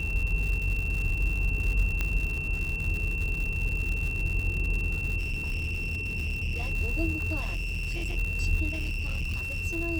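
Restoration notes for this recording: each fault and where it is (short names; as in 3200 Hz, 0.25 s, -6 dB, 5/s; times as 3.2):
crackle 200/s -32 dBFS
tone 2700 Hz -32 dBFS
2.01 pop -14 dBFS
5.18–6.72 clipped -26.5 dBFS
7.39–8.18 clipped -28 dBFS
8.69–9.66 clipped -27.5 dBFS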